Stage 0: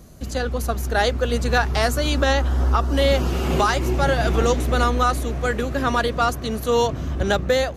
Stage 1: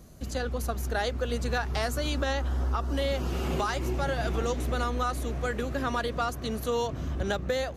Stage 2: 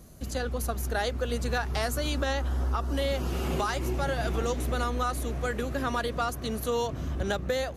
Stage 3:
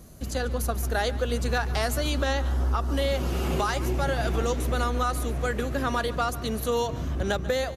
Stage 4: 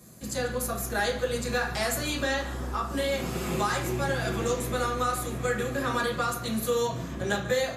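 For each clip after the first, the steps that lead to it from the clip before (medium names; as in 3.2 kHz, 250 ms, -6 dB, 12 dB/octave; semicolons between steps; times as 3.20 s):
compression 2.5:1, threshold -21 dBFS, peak gain reduction 5.5 dB; trim -5.5 dB
peaking EQ 11 kHz +5.5 dB 0.64 oct
delay 143 ms -17 dB; trim +2.5 dB
reverberation RT60 0.45 s, pre-delay 3 ms, DRR -3 dB; trim -2 dB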